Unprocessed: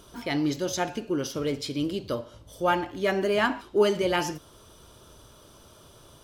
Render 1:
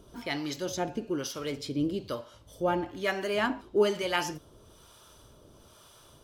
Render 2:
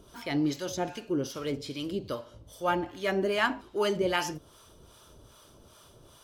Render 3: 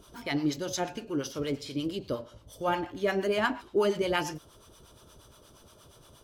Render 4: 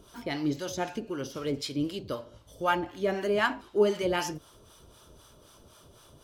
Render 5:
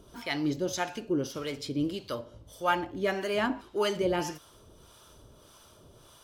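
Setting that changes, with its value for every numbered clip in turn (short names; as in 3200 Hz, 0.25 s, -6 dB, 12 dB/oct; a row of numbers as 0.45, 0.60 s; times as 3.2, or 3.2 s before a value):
harmonic tremolo, rate: 1.1, 2.5, 8.5, 3.9, 1.7 Hz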